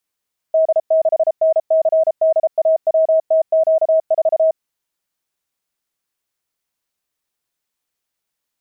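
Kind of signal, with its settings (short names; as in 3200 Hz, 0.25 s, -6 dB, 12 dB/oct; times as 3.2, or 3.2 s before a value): Morse "D6NCDAWTQ4" 33 wpm 640 Hz -10 dBFS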